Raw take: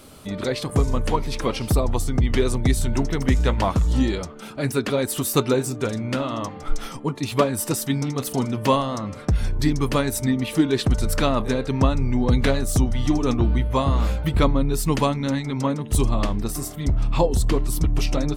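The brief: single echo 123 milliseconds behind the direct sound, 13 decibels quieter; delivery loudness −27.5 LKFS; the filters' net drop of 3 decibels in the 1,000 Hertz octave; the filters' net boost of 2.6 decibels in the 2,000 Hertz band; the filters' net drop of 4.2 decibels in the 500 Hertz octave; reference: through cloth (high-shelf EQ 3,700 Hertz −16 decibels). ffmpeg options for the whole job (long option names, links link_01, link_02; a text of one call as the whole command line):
ffmpeg -i in.wav -af "equalizer=frequency=500:width_type=o:gain=-4.5,equalizer=frequency=1000:width_type=o:gain=-3.5,equalizer=frequency=2000:width_type=o:gain=9,highshelf=frequency=3700:gain=-16,aecho=1:1:123:0.224,volume=-3.5dB" out.wav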